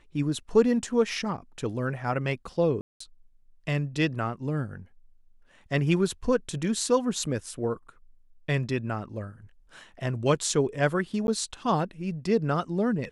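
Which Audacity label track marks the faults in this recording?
2.810000	3.000000	drop-out 194 ms
11.270000	11.280000	drop-out

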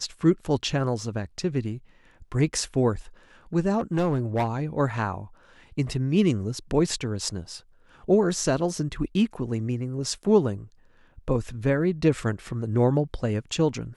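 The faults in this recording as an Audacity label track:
3.780000	4.600000	clipping −19.5 dBFS

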